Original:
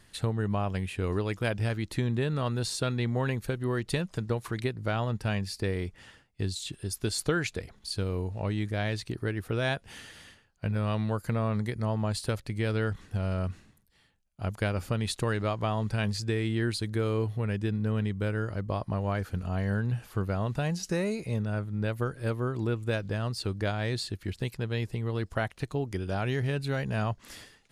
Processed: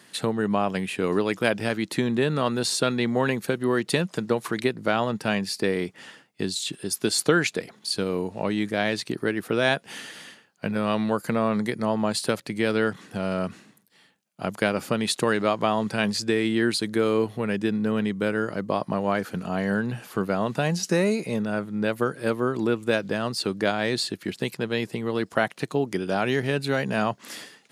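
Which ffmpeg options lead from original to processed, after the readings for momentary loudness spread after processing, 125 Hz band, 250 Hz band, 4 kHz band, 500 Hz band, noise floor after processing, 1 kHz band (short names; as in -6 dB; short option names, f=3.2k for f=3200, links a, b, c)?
6 LU, -3.5 dB, +7.5 dB, +8.0 dB, +8.0 dB, -58 dBFS, +8.0 dB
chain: -af "highpass=f=170:w=0.5412,highpass=f=170:w=1.3066,volume=8dB"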